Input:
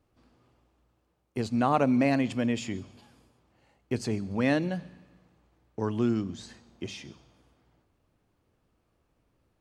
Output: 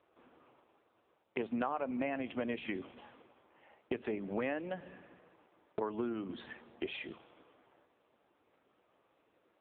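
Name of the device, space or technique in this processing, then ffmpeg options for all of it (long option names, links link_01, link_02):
voicemail: -af "highpass=390,lowpass=3000,acompressor=threshold=-41dB:ratio=8,volume=9dB" -ar 8000 -c:a libopencore_amrnb -b:a 5900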